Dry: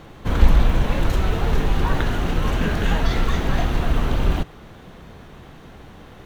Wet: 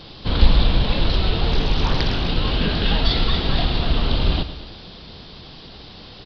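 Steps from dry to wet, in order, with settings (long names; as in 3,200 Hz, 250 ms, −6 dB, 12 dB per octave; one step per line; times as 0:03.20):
bit reduction 8 bits
high shelf with overshoot 2,700 Hz +10.5 dB, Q 1.5
downsampling to 11,025 Hz
on a send: repeating echo 109 ms, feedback 55%, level −13 dB
0:01.51–0:02.28: on the sum: highs frequency-modulated by the lows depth 0.51 ms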